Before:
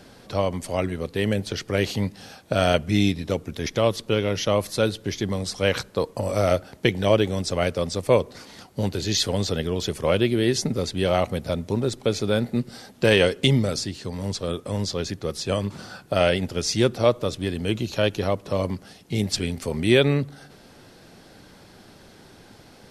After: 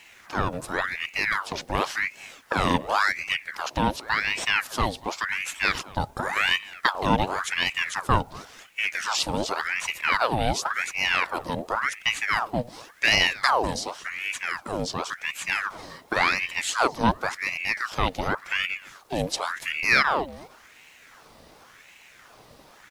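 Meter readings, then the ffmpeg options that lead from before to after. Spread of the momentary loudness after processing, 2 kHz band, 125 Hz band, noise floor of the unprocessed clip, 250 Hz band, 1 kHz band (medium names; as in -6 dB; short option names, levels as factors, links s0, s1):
8 LU, +7.5 dB, -9.5 dB, -50 dBFS, -8.0 dB, +6.0 dB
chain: -filter_complex "[0:a]acrusher=bits=9:mix=0:aa=0.000001,asplit=2[s0][s1];[s1]adelay=233.2,volume=0.0891,highshelf=f=4000:g=-5.25[s2];[s0][s2]amix=inputs=2:normalize=0,aeval=exprs='val(0)*sin(2*PI*1400*n/s+1400*0.75/0.91*sin(2*PI*0.91*n/s))':c=same"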